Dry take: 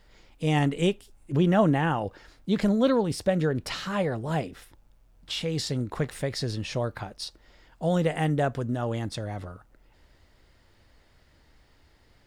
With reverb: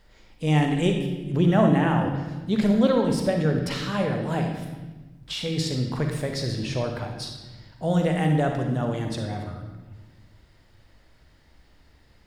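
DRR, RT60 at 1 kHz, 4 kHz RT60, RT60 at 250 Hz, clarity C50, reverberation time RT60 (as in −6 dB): 3.0 dB, 1.1 s, 1.1 s, 1.9 s, 4.0 dB, 1.2 s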